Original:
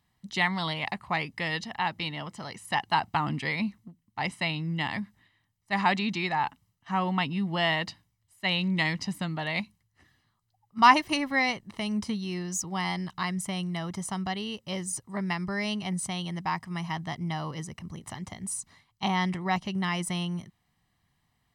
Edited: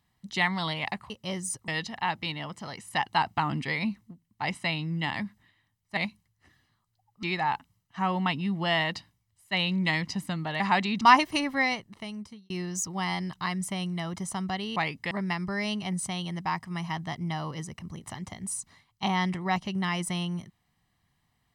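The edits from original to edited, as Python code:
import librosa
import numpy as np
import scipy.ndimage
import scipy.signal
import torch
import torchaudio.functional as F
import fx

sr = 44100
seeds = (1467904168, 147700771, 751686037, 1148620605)

y = fx.edit(x, sr, fx.swap(start_s=1.1, length_s=0.35, other_s=14.53, other_length_s=0.58),
    fx.swap(start_s=5.74, length_s=0.41, other_s=9.52, other_length_s=1.26),
    fx.fade_out_span(start_s=11.35, length_s=0.92), tone=tone)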